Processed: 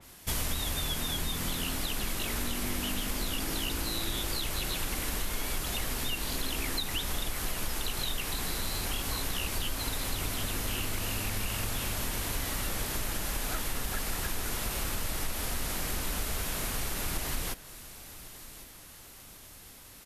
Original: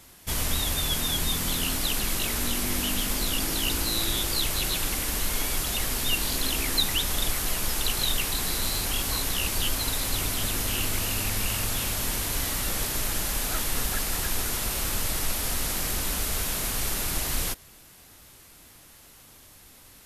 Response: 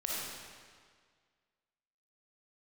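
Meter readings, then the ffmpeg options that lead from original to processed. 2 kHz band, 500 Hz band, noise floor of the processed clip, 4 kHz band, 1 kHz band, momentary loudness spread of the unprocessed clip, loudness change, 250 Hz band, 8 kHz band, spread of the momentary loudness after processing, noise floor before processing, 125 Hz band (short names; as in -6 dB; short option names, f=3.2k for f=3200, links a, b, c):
-4.5 dB, -3.5 dB, -50 dBFS, -6.5 dB, -3.5 dB, 2 LU, -6.5 dB, -4.0 dB, -7.5 dB, 14 LU, -52 dBFS, -4.0 dB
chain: -filter_complex "[0:a]acompressor=threshold=-27dB:ratio=6,asplit=2[a][b];[b]aecho=0:1:1100|2200|3300|4400:0.126|0.0541|0.0233|0.01[c];[a][c]amix=inputs=2:normalize=0,adynamicequalizer=threshold=0.00562:dfrequency=3200:dqfactor=0.7:tfrequency=3200:tqfactor=0.7:attack=5:release=100:ratio=0.375:range=2:mode=cutabove:tftype=highshelf"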